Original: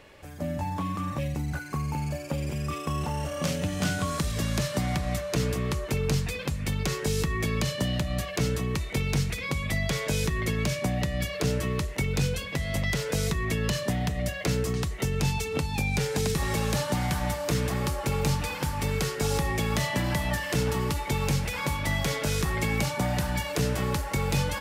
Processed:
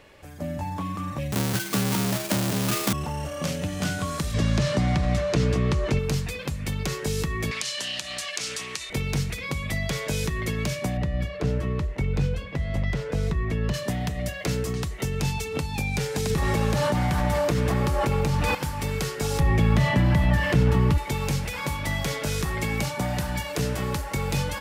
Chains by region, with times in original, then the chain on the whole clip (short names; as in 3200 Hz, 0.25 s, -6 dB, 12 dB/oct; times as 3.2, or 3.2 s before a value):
1.32–2.93 half-waves squared off + high shelf 3400 Hz +11.5 dB + frequency shift +46 Hz
4.34–5.99 LPF 6100 Hz + low shelf 460 Hz +4 dB + fast leveller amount 50%
7.51–8.9 weighting filter ITU-R 468 + compressor 3:1, threshold -27 dBFS + Doppler distortion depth 0.16 ms
10.97–13.74 LPF 1500 Hz 6 dB/oct + low shelf 61 Hz +9.5 dB
16.3–18.55 high shelf 3100 Hz -8.5 dB + fast leveller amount 100%
19.4–20.98 tone controls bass +8 dB, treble -11 dB + fast leveller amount 50%
whole clip: dry